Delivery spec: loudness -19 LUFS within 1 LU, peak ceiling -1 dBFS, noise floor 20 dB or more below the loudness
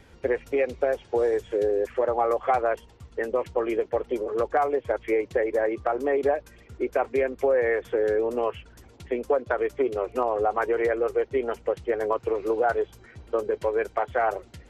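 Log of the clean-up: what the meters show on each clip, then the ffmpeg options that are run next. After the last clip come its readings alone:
loudness -26.0 LUFS; peak -11.5 dBFS; loudness target -19.0 LUFS
-> -af "volume=7dB"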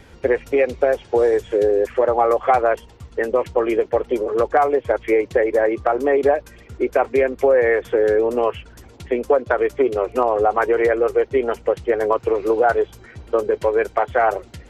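loudness -19.0 LUFS; peak -4.5 dBFS; noise floor -46 dBFS

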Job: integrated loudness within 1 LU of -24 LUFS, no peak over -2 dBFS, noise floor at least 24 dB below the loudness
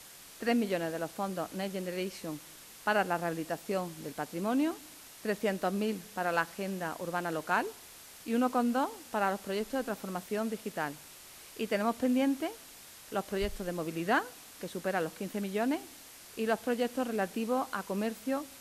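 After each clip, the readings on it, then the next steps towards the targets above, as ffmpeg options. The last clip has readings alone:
noise floor -52 dBFS; noise floor target -58 dBFS; loudness -33.5 LUFS; peak -15.5 dBFS; loudness target -24.0 LUFS
-> -af "afftdn=nr=6:nf=-52"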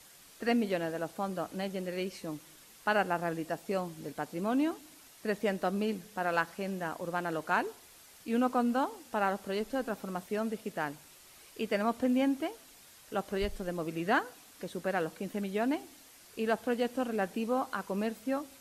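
noise floor -56 dBFS; noise floor target -58 dBFS
-> -af "afftdn=nr=6:nf=-56"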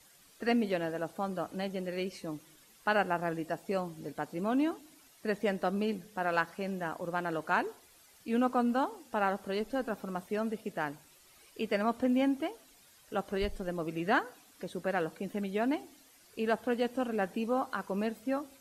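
noise floor -61 dBFS; loudness -33.5 LUFS; peak -15.5 dBFS; loudness target -24.0 LUFS
-> -af "volume=9.5dB"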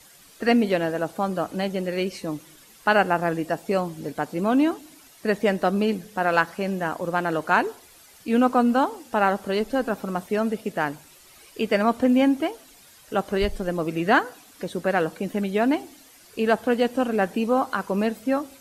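loudness -24.0 LUFS; peak -6.0 dBFS; noise floor -52 dBFS

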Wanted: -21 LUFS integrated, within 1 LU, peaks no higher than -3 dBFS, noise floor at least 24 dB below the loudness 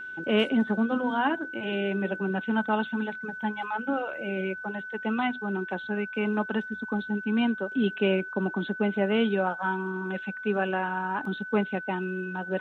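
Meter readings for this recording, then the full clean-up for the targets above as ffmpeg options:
steady tone 1500 Hz; tone level -36 dBFS; loudness -28.5 LUFS; peak -11.5 dBFS; loudness target -21.0 LUFS
-> -af "bandreject=f=1.5k:w=30"
-af "volume=7.5dB"

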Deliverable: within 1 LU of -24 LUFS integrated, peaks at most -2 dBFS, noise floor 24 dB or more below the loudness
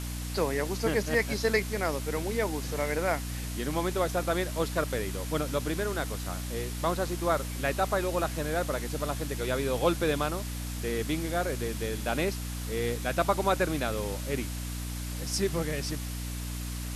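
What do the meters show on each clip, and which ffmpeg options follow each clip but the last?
hum 60 Hz; harmonics up to 300 Hz; hum level -33 dBFS; noise floor -35 dBFS; noise floor target -55 dBFS; loudness -30.5 LUFS; peak -12.0 dBFS; loudness target -24.0 LUFS
-> -af "bandreject=f=60:t=h:w=6,bandreject=f=120:t=h:w=6,bandreject=f=180:t=h:w=6,bandreject=f=240:t=h:w=6,bandreject=f=300:t=h:w=6"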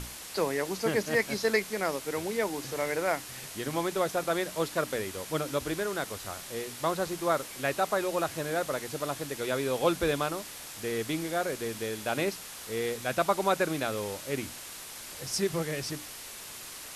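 hum none; noise floor -44 dBFS; noise floor target -56 dBFS
-> -af "afftdn=nr=12:nf=-44"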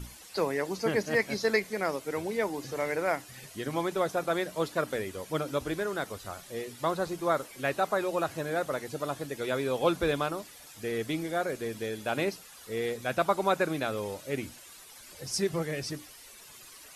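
noise floor -51 dBFS; noise floor target -56 dBFS
-> -af "afftdn=nr=6:nf=-51"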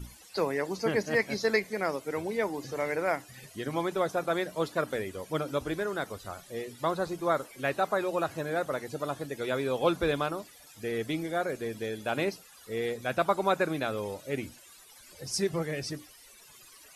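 noise floor -54 dBFS; noise floor target -56 dBFS
-> -af "afftdn=nr=6:nf=-54"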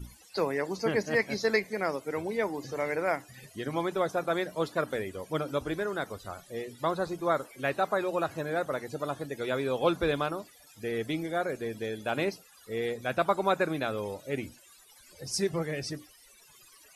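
noise floor -57 dBFS; loudness -31.5 LUFS; peak -12.0 dBFS; loudness target -24.0 LUFS
-> -af "volume=7.5dB"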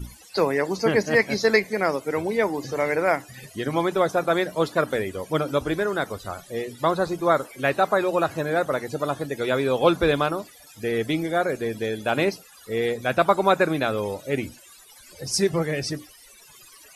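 loudness -24.0 LUFS; peak -4.5 dBFS; noise floor -50 dBFS

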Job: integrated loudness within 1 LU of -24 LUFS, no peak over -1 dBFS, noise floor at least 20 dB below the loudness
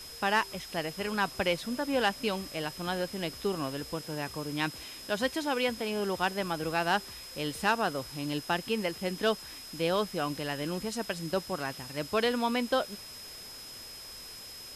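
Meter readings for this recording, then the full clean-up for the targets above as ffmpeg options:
steady tone 5100 Hz; tone level -45 dBFS; noise floor -46 dBFS; noise floor target -52 dBFS; loudness -32.0 LUFS; peak -14.5 dBFS; loudness target -24.0 LUFS
-> -af "bandreject=f=5.1k:w=30"
-af "afftdn=nr=6:nf=-46"
-af "volume=8dB"

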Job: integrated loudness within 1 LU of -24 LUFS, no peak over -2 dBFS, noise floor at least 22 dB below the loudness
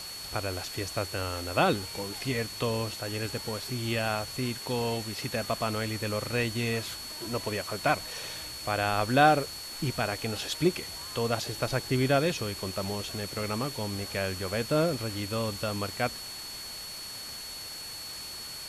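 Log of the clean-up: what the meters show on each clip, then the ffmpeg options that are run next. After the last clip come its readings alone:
steady tone 4400 Hz; tone level -40 dBFS; noise floor -41 dBFS; noise floor target -53 dBFS; loudness -30.5 LUFS; peak -7.0 dBFS; loudness target -24.0 LUFS
-> -af "bandreject=f=4.4k:w=30"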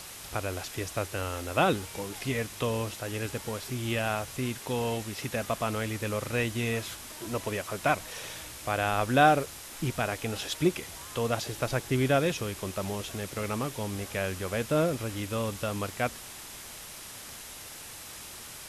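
steady tone none; noise floor -44 dBFS; noise floor target -53 dBFS
-> -af "afftdn=nr=9:nf=-44"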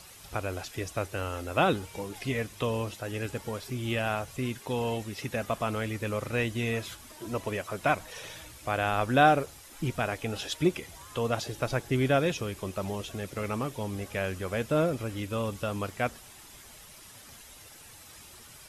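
noise floor -51 dBFS; noise floor target -53 dBFS
-> -af "afftdn=nr=6:nf=-51"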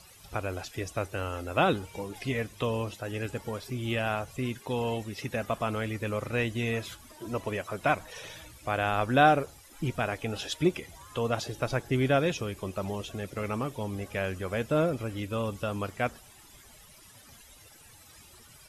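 noise floor -54 dBFS; loudness -31.0 LUFS; peak -7.5 dBFS; loudness target -24.0 LUFS
-> -af "volume=7dB,alimiter=limit=-2dB:level=0:latency=1"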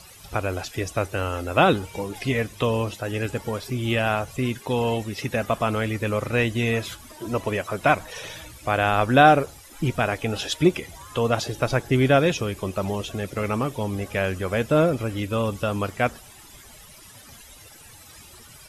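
loudness -24.0 LUFS; peak -2.0 dBFS; noise floor -47 dBFS

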